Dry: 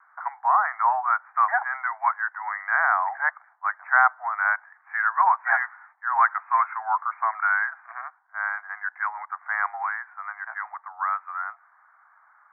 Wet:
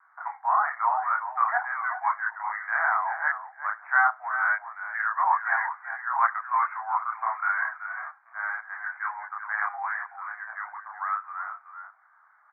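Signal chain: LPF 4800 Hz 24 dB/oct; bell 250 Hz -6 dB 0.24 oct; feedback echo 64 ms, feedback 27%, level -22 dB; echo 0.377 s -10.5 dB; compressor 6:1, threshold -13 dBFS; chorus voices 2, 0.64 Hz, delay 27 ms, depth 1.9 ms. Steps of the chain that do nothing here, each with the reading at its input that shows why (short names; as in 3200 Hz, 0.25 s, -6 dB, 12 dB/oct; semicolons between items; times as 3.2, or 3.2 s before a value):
LPF 4800 Hz: input band ends at 2300 Hz; bell 250 Hz: input band starts at 570 Hz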